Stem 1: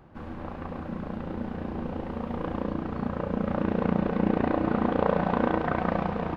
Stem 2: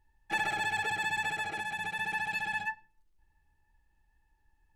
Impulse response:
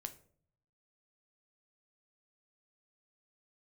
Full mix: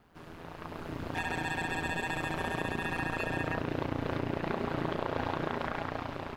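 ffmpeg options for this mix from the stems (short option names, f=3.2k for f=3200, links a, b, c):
-filter_complex "[0:a]alimiter=limit=-16.5dB:level=0:latency=1:release=37,crystalizer=i=7.5:c=0,volume=-8dB[a];[1:a]acompressor=threshold=-55dB:ratio=1.5,adelay=850,volume=3dB[b];[a][b]amix=inputs=2:normalize=0,dynaudnorm=f=270:g=7:m=10dB,aeval=exprs='val(0)*sin(2*PI*84*n/s)':c=same,acompressor=threshold=-33dB:ratio=2"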